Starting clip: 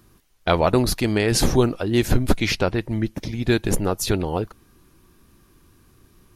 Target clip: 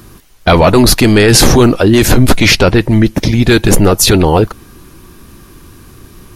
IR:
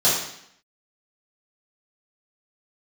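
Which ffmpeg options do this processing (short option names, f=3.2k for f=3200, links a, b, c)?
-af "apsyclip=19.5dB,volume=-1.5dB"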